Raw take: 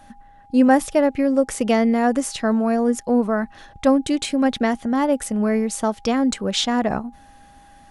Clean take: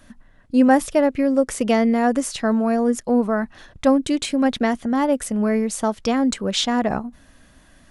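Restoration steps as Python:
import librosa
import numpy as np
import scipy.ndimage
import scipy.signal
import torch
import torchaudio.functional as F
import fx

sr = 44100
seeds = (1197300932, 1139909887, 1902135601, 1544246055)

y = fx.notch(x, sr, hz=810.0, q=30.0)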